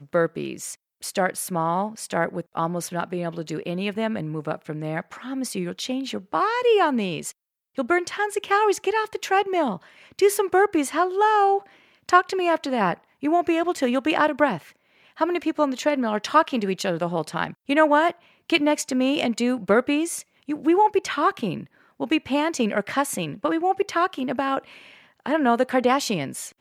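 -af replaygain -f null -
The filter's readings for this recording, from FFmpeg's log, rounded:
track_gain = +2.7 dB
track_peak = 0.512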